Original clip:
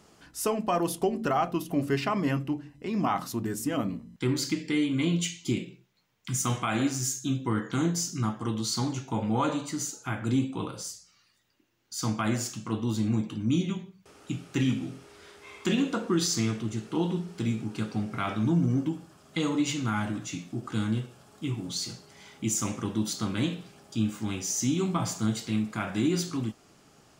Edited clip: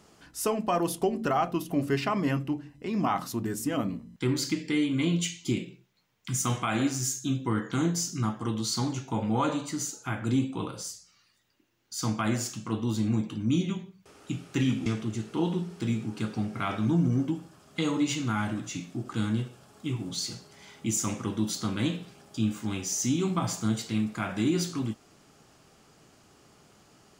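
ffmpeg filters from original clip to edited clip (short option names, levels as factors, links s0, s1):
-filter_complex "[0:a]asplit=2[s0][s1];[s0]atrim=end=14.862[s2];[s1]atrim=start=16.438[s3];[s2][s3]acrossfade=d=0.004:c1=hsin:c2=hsin"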